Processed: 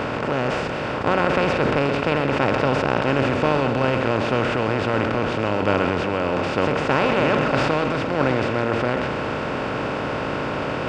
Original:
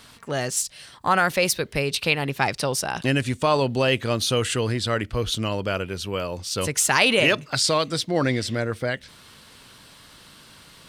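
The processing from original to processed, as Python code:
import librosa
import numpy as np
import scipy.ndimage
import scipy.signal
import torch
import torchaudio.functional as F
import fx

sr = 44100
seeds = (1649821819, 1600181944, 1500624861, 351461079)

p1 = fx.bin_compress(x, sr, power=0.2)
p2 = fx.highpass(p1, sr, hz=130.0, slope=6)
p3 = fx.low_shelf(p2, sr, hz=360.0, db=4.5)
p4 = fx.notch(p3, sr, hz=4000.0, q=16.0)
p5 = fx.level_steps(p4, sr, step_db=11)
p6 = p4 + (p5 * librosa.db_to_amplitude(-3.0))
p7 = fx.spacing_loss(p6, sr, db_at_10k=38)
p8 = p7 + fx.echo_single(p7, sr, ms=131, db=-9.0, dry=0)
p9 = fx.sustainer(p8, sr, db_per_s=21.0)
y = p9 * librosa.db_to_amplitude(-9.0)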